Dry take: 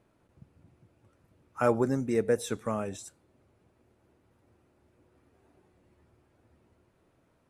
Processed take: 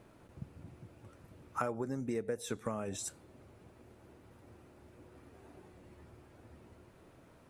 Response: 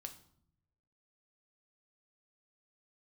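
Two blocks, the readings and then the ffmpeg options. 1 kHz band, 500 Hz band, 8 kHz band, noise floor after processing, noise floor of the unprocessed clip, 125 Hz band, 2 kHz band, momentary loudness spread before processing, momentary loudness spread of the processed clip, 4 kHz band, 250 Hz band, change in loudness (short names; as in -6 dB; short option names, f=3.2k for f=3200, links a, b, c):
-6.0 dB, -10.0 dB, -0.5 dB, -61 dBFS, -69 dBFS, -7.0 dB, -8.0 dB, 19 LU, 22 LU, -3.0 dB, -8.0 dB, -10.0 dB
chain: -af "acompressor=threshold=-41dB:ratio=16,volume=8.5dB"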